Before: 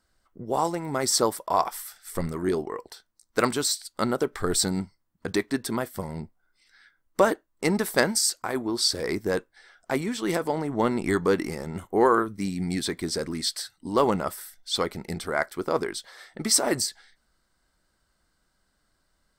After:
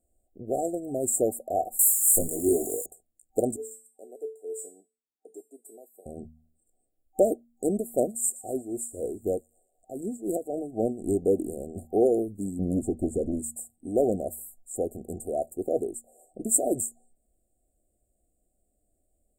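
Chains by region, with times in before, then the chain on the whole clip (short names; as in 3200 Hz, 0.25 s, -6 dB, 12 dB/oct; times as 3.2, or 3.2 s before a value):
1.79–2.86 switching spikes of -30 dBFS + bell 6700 Hz +14 dB 2.8 oct + doubler 19 ms -3 dB
3.56–6.06 HPF 320 Hz 24 dB/oct + resonator 440 Hz, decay 0.34 s, mix 90%
7.76–11.09 tremolo 3.9 Hz, depth 72% + thin delay 0.117 s, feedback 53%, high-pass 2400 Hz, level -18 dB
12.59–13.39 tilt -2.5 dB/oct + Doppler distortion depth 0.47 ms
whole clip: bell 160 Hz -13.5 dB 0.37 oct; de-hum 78.61 Hz, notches 3; FFT band-reject 770–6800 Hz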